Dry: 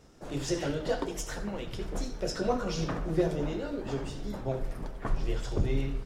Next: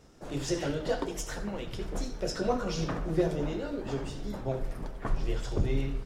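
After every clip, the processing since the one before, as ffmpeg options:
-af anull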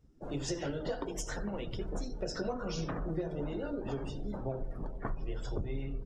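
-af "afftdn=nr=20:nf=-47,acompressor=threshold=-32dB:ratio=6"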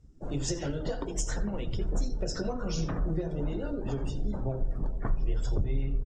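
-af "lowpass=f=7.7k:t=q:w=2.4,lowshelf=f=180:g=10,aecho=1:1:86:0.075"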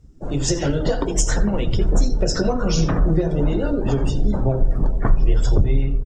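-af "dynaudnorm=f=180:g=5:m=4.5dB,volume=8dB"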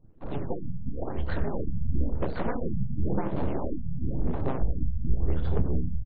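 -af "aemphasis=mode=reproduction:type=75fm,aeval=exprs='abs(val(0))':c=same,afftfilt=real='re*lt(b*sr/1024,210*pow(4700/210,0.5+0.5*sin(2*PI*0.96*pts/sr)))':imag='im*lt(b*sr/1024,210*pow(4700/210,0.5+0.5*sin(2*PI*0.96*pts/sr)))':win_size=1024:overlap=0.75,volume=-7.5dB"

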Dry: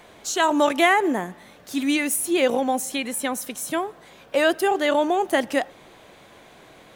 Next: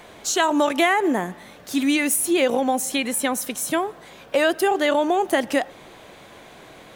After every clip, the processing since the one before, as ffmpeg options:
-af "acompressor=threshold=-21dB:ratio=2.5,volume=4dB"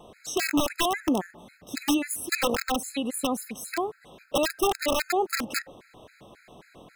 -af "tiltshelf=f=730:g=3.5,aeval=exprs='(mod(3.76*val(0)+1,2)-1)/3.76':c=same,afftfilt=real='re*gt(sin(2*PI*3.7*pts/sr)*(1-2*mod(floor(b*sr/1024/1300),2)),0)':imag='im*gt(sin(2*PI*3.7*pts/sr)*(1-2*mod(floor(b*sr/1024/1300),2)),0)':win_size=1024:overlap=0.75,volume=-4dB"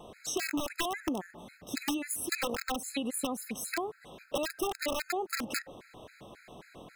-af "acompressor=threshold=-30dB:ratio=6"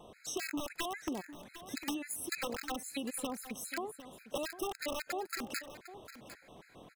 -af "aecho=1:1:753:0.211,volume=-5dB"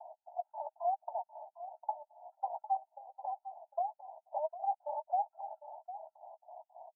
-filter_complex "[0:a]acrusher=bits=8:mode=log:mix=0:aa=0.000001,asuperpass=centerf=760:order=12:qfactor=2.4,asplit=2[a][b];[b]adelay=14,volume=-11dB[c];[a][c]amix=inputs=2:normalize=0,volume=10dB"

